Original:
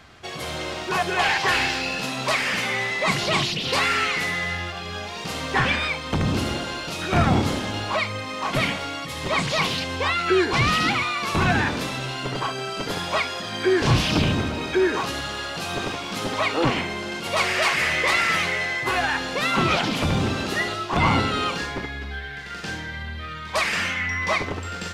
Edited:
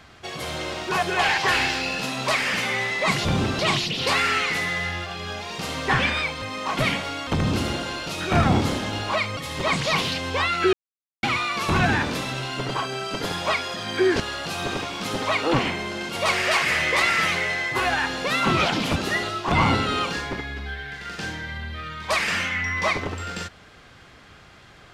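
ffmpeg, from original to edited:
ffmpeg -i in.wav -filter_complex "[0:a]asplit=10[link_01][link_02][link_03][link_04][link_05][link_06][link_07][link_08][link_09][link_10];[link_01]atrim=end=3.252[link_11];[link_02]atrim=start=20.068:end=20.412[link_12];[link_03]atrim=start=3.248:end=6.082[link_13];[link_04]atrim=start=8.178:end=9.032[link_14];[link_05]atrim=start=6.078:end=8.182[link_15];[link_06]atrim=start=9.028:end=10.39,asetpts=PTS-STARTPTS,afade=type=out:start_time=1.358:duration=0.004:curve=hsin[link_16];[link_07]atrim=start=10.39:end=10.89,asetpts=PTS-STARTPTS,volume=0[link_17];[link_08]atrim=start=10.89:end=13.862,asetpts=PTS-STARTPTS,afade=type=in:duration=0.004:curve=hsin[link_18];[link_09]atrim=start=15.308:end=20.072[link_19];[link_10]atrim=start=20.408[link_20];[link_11][link_12]acrossfade=duration=0.004:curve1=hsin:curve2=hsin[link_21];[link_21][link_13]acrossfade=duration=0.004:curve1=hsin:curve2=hsin[link_22];[link_22][link_14]acrossfade=duration=0.004:curve1=hsin:curve2=hsin[link_23];[link_23][link_15]acrossfade=duration=0.004:curve1=hsin:curve2=hsin[link_24];[link_16][link_17][link_18]concat=n=3:v=0:a=1[link_25];[link_24][link_25]acrossfade=duration=0.004:curve1=hsin:curve2=hsin[link_26];[link_26][link_19]acrossfade=duration=0.004:curve1=hsin:curve2=hsin[link_27];[link_27][link_20]acrossfade=duration=0.004:curve1=hsin:curve2=hsin" out.wav

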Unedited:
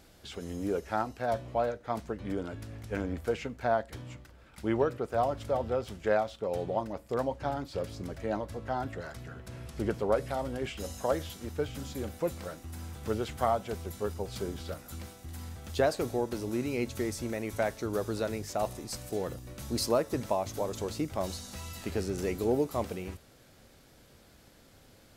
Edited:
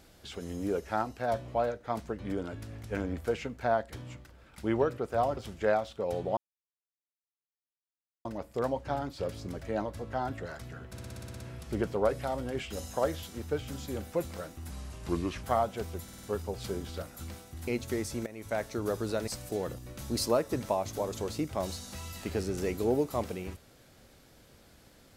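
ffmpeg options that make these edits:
ffmpeg -i in.wav -filter_complex "[0:a]asplit=20[link_01][link_02][link_03][link_04][link_05][link_06][link_07][link_08][link_09][link_10][link_11][link_12][link_13][link_14][link_15][link_16][link_17][link_18][link_19][link_20];[link_01]atrim=end=5.372[link_21];[link_02]atrim=start=5.798:end=6.8,asetpts=PTS-STARTPTS,afade=type=out:start_time=0.998:duration=0.004:curve=hsin,apad=pad_dur=1.88[link_22];[link_03]atrim=start=6.8:end=9.532,asetpts=PTS-STARTPTS,afade=type=in:duration=0.004:curve=hsin[link_23];[link_04]atrim=start=9.468:end=9.532[link_24];[link_05]atrim=start=9.468:end=9.532[link_25];[link_06]atrim=start=9.468:end=9.532[link_26];[link_07]atrim=start=9.468:end=9.532[link_27];[link_08]atrim=start=9.468:end=9.532[link_28];[link_09]atrim=start=9.468:end=9.532[link_29];[link_10]atrim=start=9.468:end=9.532[link_30];[link_11]atrim=start=9.468:end=12.774[link_31];[link_12]atrim=start=12.77:end=13.35,asetpts=PTS-STARTPTS,asetrate=34839,aresample=44100,atrim=end_sample=32377,asetpts=PTS-STARTPTS[link_32];[link_13]atrim=start=13.346:end=14.002[link_33];[link_14]atrim=start=13.948:end=14.002[link_34];[link_15]atrim=start=13.948:end=14.002[link_35];[link_16]atrim=start=13.948:end=14.002[link_36];[link_17]atrim=start=13.948:end=15.392[link_37];[link_18]atrim=start=16.748:end=17.34,asetpts=PTS-STARTPTS,afade=type=out:start_time=0.588:duration=0.004:curve=hsin:silence=0.188365[link_38];[link_19]atrim=start=17.34:end=18.352,asetpts=PTS-STARTPTS,afade=type=in:duration=0.43:silence=0.188365[link_39];[link_20]atrim=start=18.878[link_40];[link_22][link_23]concat=n=2:v=0:a=1[link_41];[link_21][link_41]acrossfade=duration=0.004:curve1=hsin:curve2=hsin[link_42];[link_42][link_24]acrossfade=duration=0.004:curve1=hsin:curve2=hsin[link_43];[link_43][link_25]acrossfade=duration=0.004:curve1=hsin:curve2=hsin[link_44];[link_44][link_26]acrossfade=duration=0.004:curve1=hsin:curve2=hsin[link_45];[link_45][link_27]acrossfade=duration=0.004:curve1=hsin:curve2=hsin[link_46];[link_46][link_28]acrossfade=duration=0.004:curve1=hsin:curve2=hsin[link_47];[link_47][link_29]acrossfade=duration=0.004:curve1=hsin:curve2=hsin[link_48];[link_48][link_30]acrossfade=duration=0.004:curve1=hsin:curve2=hsin[link_49];[link_49][link_31]acrossfade=duration=0.004:curve1=hsin:curve2=hsin[link_50];[link_50][link_32]acrossfade=duration=0.004:curve1=hsin:curve2=hsin[link_51];[link_51][link_33]acrossfade=duration=0.004:curve1=hsin:curve2=hsin[link_52];[link_52][link_34]acrossfade=duration=0.004:curve1=hsin:curve2=hsin[link_53];[link_53][link_35]acrossfade=duration=0.004:curve1=hsin:curve2=hsin[link_54];[link_54][link_36]acrossfade=duration=0.004:curve1=hsin:curve2=hsin[link_55];[link_55][link_37]acrossfade=duration=0.004:curve1=hsin:curve2=hsin[link_56];[link_38][link_39]concat=n=2:v=0:a=1[link_57];[link_56][link_57]acrossfade=duration=0.004:curve1=hsin:curve2=hsin[link_58];[link_58][link_40]acrossfade=duration=0.004:curve1=hsin:curve2=hsin" out.wav

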